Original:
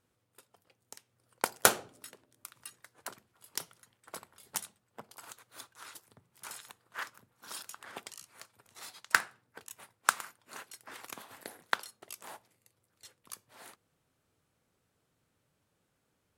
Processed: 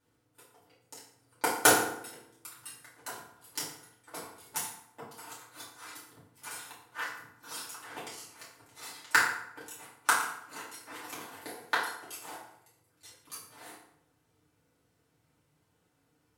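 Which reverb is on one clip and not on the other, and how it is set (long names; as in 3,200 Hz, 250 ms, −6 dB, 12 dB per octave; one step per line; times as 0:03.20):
feedback delay network reverb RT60 0.74 s, low-frequency decay 1×, high-frequency decay 0.7×, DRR −9 dB
level −5.5 dB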